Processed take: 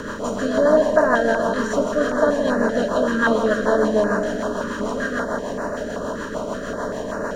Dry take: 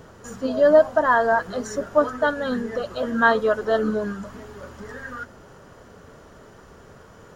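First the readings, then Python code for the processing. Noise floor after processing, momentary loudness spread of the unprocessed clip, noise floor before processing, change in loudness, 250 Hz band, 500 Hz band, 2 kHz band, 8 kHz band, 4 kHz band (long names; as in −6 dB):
−29 dBFS, 22 LU, −48 dBFS, 0.0 dB, +6.0 dB, +2.5 dB, +1.5 dB, can't be measured, +4.0 dB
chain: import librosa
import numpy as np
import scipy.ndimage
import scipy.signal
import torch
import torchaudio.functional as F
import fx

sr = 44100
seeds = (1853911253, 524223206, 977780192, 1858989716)

p1 = fx.bin_compress(x, sr, power=0.4)
p2 = fx.low_shelf(p1, sr, hz=62.0, db=10.0)
p3 = fx.rotary(p2, sr, hz=6.7)
p4 = p3 + fx.echo_split(p3, sr, split_hz=630.0, low_ms=220, high_ms=162, feedback_pct=52, wet_db=-8, dry=0)
y = fx.filter_held_notch(p4, sr, hz=5.2, low_hz=710.0, high_hz=3300.0)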